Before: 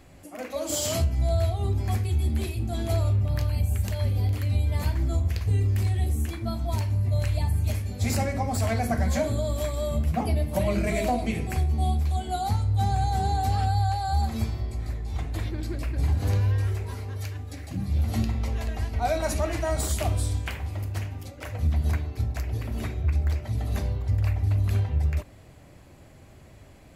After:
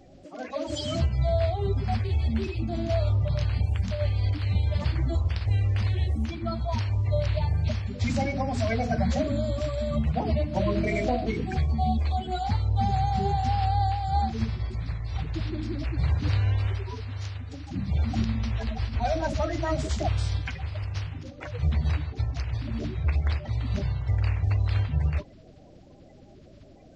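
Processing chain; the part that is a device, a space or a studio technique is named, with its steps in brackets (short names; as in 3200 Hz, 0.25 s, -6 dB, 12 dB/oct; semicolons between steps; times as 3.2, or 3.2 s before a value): clip after many re-uploads (LPF 5300 Hz 24 dB/oct; bin magnitudes rounded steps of 30 dB); 7.27–8.06 LPF 7500 Hz 12 dB/oct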